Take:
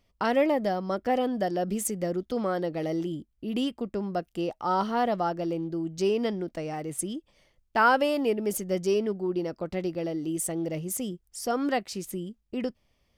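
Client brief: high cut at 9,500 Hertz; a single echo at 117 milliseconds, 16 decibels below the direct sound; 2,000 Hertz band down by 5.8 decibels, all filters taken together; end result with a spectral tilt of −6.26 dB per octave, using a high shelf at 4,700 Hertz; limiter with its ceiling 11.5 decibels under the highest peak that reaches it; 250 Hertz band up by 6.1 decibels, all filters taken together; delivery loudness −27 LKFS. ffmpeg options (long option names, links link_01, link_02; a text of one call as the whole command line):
ffmpeg -i in.wav -af "lowpass=9500,equalizer=frequency=250:width_type=o:gain=8,equalizer=frequency=2000:width_type=o:gain=-8.5,highshelf=frequency=4700:gain=-4.5,alimiter=limit=-22dB:level=0:latency=1,aecho=1:1:117:0.158,volume=3.5dB" out.wav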